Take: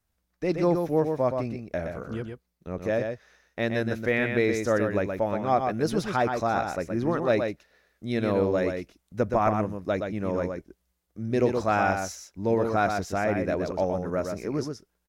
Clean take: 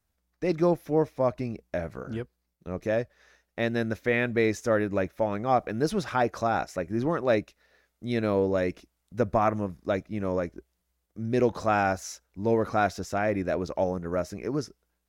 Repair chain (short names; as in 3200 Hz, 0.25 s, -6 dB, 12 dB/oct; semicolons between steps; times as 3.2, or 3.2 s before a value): inverse comb 0.122 s -5.5 dB